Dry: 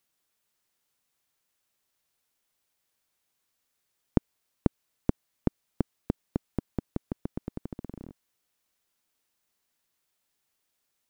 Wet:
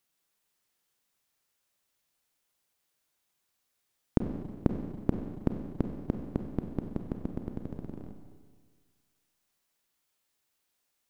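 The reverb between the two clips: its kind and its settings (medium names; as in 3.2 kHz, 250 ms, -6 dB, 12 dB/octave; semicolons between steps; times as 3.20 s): Schroeder reverb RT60 1.7 s, combs from 31 ms, DRR 4.5 dB; trim -1.5 dB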